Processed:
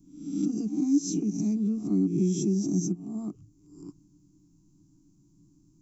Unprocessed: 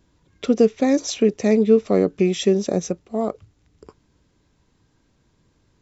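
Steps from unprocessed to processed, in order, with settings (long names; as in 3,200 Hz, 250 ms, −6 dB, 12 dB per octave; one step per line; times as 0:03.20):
peak hold with a rise ahead of every peak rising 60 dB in 0.60 s
drawn EQ curve 120 Hz 0 dB, 290 Hz +12 dB, 450 Hz −22 dB, 1,600 Hz −14 dB, 2,500 Hz −15 dB, 3,600 Hz −20 dB, 6,100 Hz 0 dB
downward compressor 1.5 to 1, threshold −30 dBFS, peak gain reduction 9.5 dB
phaser with its sweep stopped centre 360 Hz, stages 8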